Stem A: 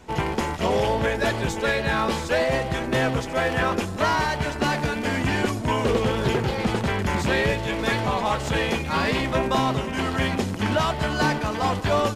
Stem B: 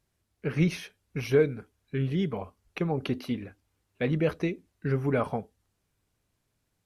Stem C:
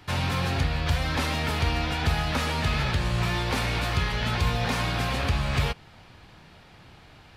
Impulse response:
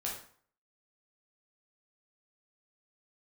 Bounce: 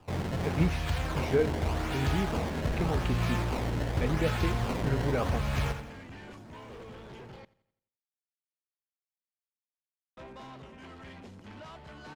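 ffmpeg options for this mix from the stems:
-filter_complex "[0:a]asoftclip=type=tanh:threshold=0.0668,adelay=850,volume=0.112,asplit=3[s0][s1][s2];[s0]atrim=end=7.45,asetpts=PTS-STARTPTS,afade=t=out:st=7.446:d=0.004:c=hsin[s3];[s1]atrim=start=7.45:end=10.17,asetpts=PTS-STARTPTS,volume=0[s4];[s2]atrim=start=10.17,asetpts=PTS-STARTPTS,afade=t=in:d=0.004:c=hsin[s5];[s3][s4][s5]concat=n=3:v=0:a=1,asplit=2[s6][s7];[s7]volume=0.0668[s8];[1:a]volume=0.631[s9];[2:a]acrusher=samples=21:mix=1:aa=0.000001:lfo=1:lforange=33.6:lforate=0.86,volume=0.531,asplit=2[s10][s11];[s11]volume=0.335[s12];[s8][s12]amix=inputs=2:normalize=0,aecho=0:1:86|172|258|344|430|516:1|0.46|0.212|0.0973|0.0448|0.0206[s13];[s6][s9][s10][s13]amix=inputs=4:normalize=0,highshelf=f=7500:g=-10.5"

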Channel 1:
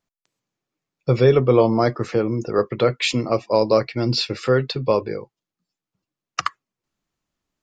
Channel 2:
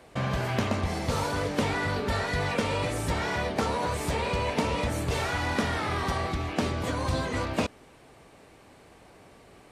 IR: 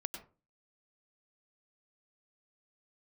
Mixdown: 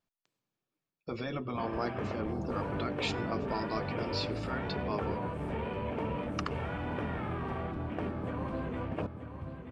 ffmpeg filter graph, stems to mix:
-filter_complex "[0:a]volume=0.501,afade=t=out:st=0.77:d=0.28:silence=0.421697,asplit=2[s0][s1];[s1]volume=0.15[s2];[1:a]lowpass=11000,afwtdn=0.0158,equalizer=f=160:w=0.51:g=10,adelay=1400,volume=0.299,asplit=2[s3][s4];[s4]volume=0.316[s5];[2:a]atrim=start_sample=2205[s6];[s2][s6]afir=irnorm=-1:irlink=0[s7];[s5]aecho=0:1:932|1864|2796|3728|4660:1|0.36|0.13|0.0467|0.0168[s8];[s0][s3][s7][s8]amix=inputs=4:normalize=0,afftfilt=real='re*lt(hypot(re,im),0.2)':imag='im*lt(hypot(re,im),0.2)':win_size=1024:overlap=0.75,equalizer=f=6600:w=1.8:g=-6,bandreject=f=2000:w=14"

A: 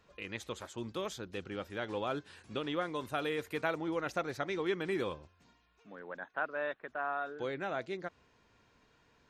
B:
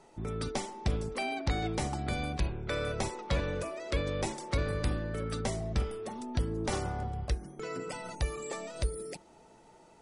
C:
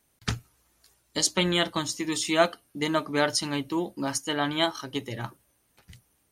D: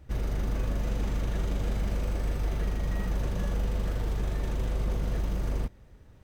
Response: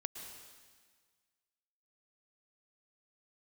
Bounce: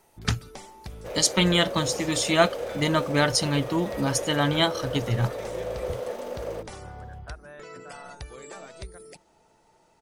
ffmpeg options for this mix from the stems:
-filter_complex "[0:a]aexciter=amount=2.9:drive=8.2:freq=4500,adelay=900,volume=0.316[s0];[1:a]acompressor=threshold=0.0251:ratio=6,equalizer=f=270:t=o:w=1.5:g=-4.5,volume=0.708[s1];[2:a]asubboost=boost=5:cutoff=170,volume=1.41,asplit=2[s2][s3];[3:a]highpass=f=520:t=q:w=5.2,adelay=950,volume=1[s4];[s3]apad=whole_len=441661[s5];[s1][s5]sidechaincompress=threshold=0.0355:ratio=8:attack=16:release=317[s6];[s0][s6][s2][s4]amix=inputs=4:normalize=0"

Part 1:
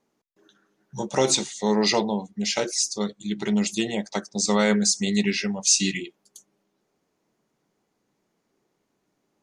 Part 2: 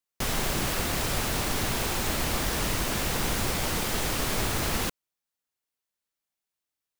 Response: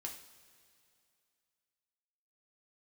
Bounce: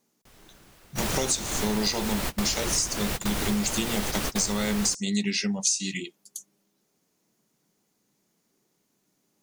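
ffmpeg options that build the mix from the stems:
-filter_complex "[0:a]equalizer=f=180:t=o:w=1.5:g=6.5,crystalizer=i=4:c=0,volume=0.596,asplit=2[s0][s1];[1:a]adelay=50,volume=1.12[s2];[s1]apad=whole_len=310665[s3];[s2][s3]sidechaingate=range=0.0398:threshold=0.0178:ratio=16:detection=peak[s4];[s0][s4]amix=inputs=2:normalize=0,acompressor=threshold=0.0794:ratio=16"

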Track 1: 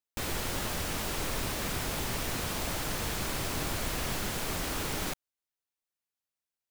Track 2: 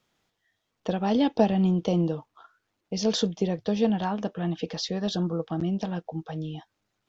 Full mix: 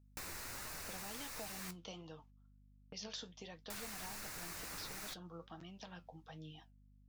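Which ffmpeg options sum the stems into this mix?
-filter_complex "[0:a]equalizer=f=3200:w=4:g=-11.5,volume=1.06,asplit=3[s0][s1][s2];[s0]atrim=end=1.71,asetpts=PTS-STARTPTS,afade=t=out:st=1.706:d=0.004:c=hsin[s3];[s1]atrim=start=1.71:end=3.7,asetpts=PTS-STARTPTS,volume=0[s4];[s2]atrim=start=3.7,asetpts=PTS-STARTPTS,afade=t=in:d=0.004:c=hsin[s5];[s3][s4][s5]concat=n=3:v=0:a=1[s6];[1:a]agate=range=0.0316:threshold=0.00562:ratio=16:detection=peak,volume=0.562[s7];[s6][s7]amix=inputs=2:normalize=0,acrossover=split=980|2900[s8][s9][s10];[s8]acompressor=threshold=0.00282:ratio=4[s11];[s9]acompressor=threshold=0.00398:ratio=4[s12];[s10]acompressor=threshold=0.00708:ratio=4[s13];[s11][s12][s13]amix=inputs=3:normalize=0,flanger=delay=6.3:depth=5.6:regen=65:speed=1.4:shape=sinusoidal,aeval=exprs='val(0)+0.000631*(sin(2*PI*50*n/s)+sin(2*PI*2*50*n/s)/2+sin(2*PI*3*50*n/s)/3+sin(2*PI*4*50*n/s)/4+sin(2*PI*5*50*n/s)/5)':c=same"

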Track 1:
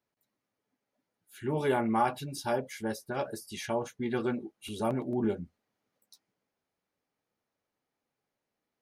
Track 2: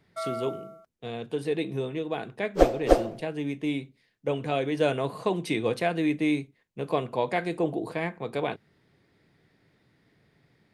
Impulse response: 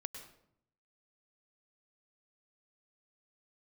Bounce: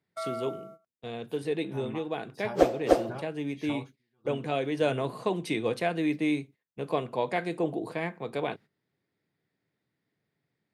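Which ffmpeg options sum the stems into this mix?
-filter_complex "[0:a]equalizer=f=125:t=o:w=1:g=10,equalizer=f=1000:t=o:w=1:g=7,equalizer=f=4000:t=o:w=1:g=6,equalizer=f=8000:t=o:w=1:g=-6,acompressor=threshold=0.0178:ratio=3,aeval=exprs='val(0)*pow(10,-28*(0.5-0.5*cos(2*PI*1.6*n/s))/20)':c=same,volume=0.708[s0];[1:a]highpass=100,volume=0.794[s1];[s0][s1]amix=inputs=2:normalize=0,agate=range=0.2:threshold=0.00398:ratio=16:detection=peak"

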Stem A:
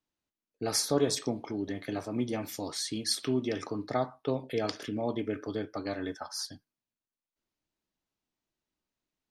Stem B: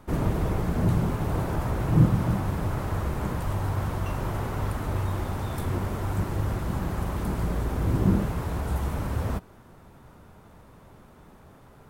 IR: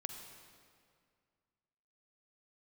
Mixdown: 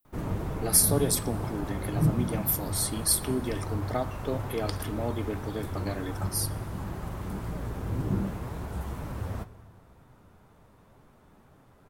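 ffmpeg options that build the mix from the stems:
-filter_complex "[0:a]aexciter=amount=8.9:drive=6.4:freq=9000,volume=0.794,asplit=2[s0][s1];[s1]volume=0.237[s2];[1:a]flanger=delay=6.2:depth=5.1:regen=65:speed=2:shape=triangular,adelay=50,volume=0.562,asplit=2[s3][s4];[s4]volume=0.531[s5];[2:a]atrim=start_sample=2205[s6];[s2][s5]amix=inputs=2:normalize=0[s7];[s7][s6]afir=irnorm=-1:irlink=0[s8];[s0][s3][s8]amix=inputs=3:normalize=0"

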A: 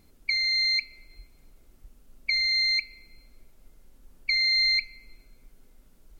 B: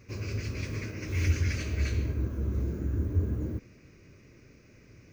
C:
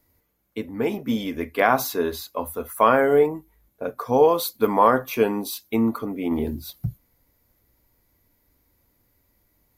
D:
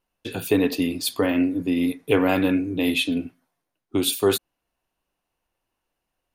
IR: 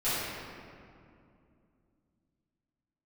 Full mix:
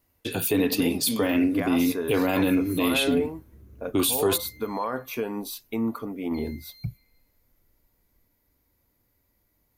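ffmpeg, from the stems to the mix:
-filter_complex "[0:a]acompressor=threshold=0.0282:ratio=6,asplit=2[s0][s1];[s1]adelay=2.1,afreqshift=1[s2];[s0][s2]amix=inputs=2:normalize=1,adelay=2050,volume=0.211[s3];[1:a]adelay=1150,volume=0.1[s4];[2:a]alimiter=limit=0.2:level=0:latency=1:release=159,volume=0.596[s5];[3:a]highshelf=f=7700:g=8.5,volume=1.12[s6];[s3][s4][s5][s6]amix=inputs=4:normalize=0,alimiter=limit=0.2:level=0:latency=1:release=45"

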